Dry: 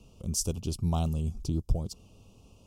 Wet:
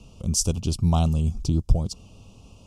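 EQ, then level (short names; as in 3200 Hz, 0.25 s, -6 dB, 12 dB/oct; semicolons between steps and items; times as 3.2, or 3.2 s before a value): LPF 9400 Hz 12 dB/oct; bell 400 Hz -4 dB 0.88 oct; +8.0 dB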